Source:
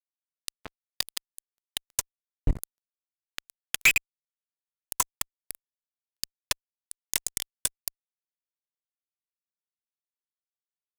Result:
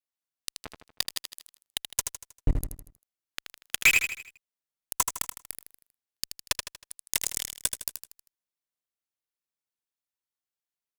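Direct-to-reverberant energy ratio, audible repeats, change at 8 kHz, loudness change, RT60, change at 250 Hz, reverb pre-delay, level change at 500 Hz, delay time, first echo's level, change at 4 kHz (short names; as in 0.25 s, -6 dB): none, 5, +1.0 dB, +0.5 dB, none, +1.0 dB, none, +1.0 dB, 79 ms, -7.0 dB, +1.0 dB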